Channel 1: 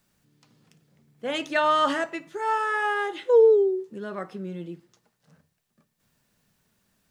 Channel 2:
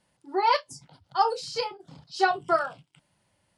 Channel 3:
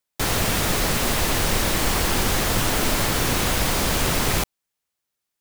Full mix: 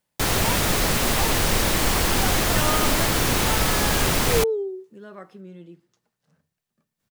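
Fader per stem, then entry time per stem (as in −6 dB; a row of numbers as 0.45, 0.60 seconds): −7.0, −10.5, +0.5 decibels; 1.00, 0.00, 0.00 seconds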